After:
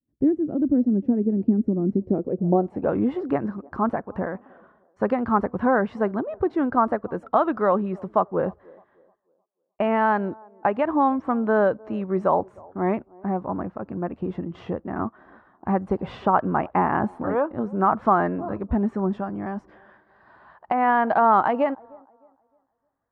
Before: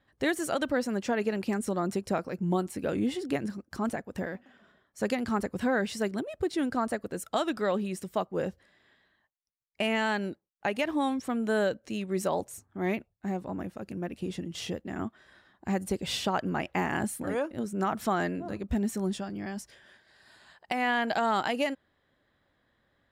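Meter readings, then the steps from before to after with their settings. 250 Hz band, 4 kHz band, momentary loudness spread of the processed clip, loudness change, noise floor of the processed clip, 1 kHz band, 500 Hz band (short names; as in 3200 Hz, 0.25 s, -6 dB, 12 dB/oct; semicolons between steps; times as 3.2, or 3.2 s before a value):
+7.5 dB, under -10 dB, 10 LU, +7.5 dB, -71 dBFS, +10.5 dB, +7.0 dB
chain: expander -59 dBFS; band-limited delay 0.307 s, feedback 31%, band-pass 510 Hz, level -24 dB; low-pass sweep 280 Hz -> 1100 Hz, 2–2.96; gain +5.5 dB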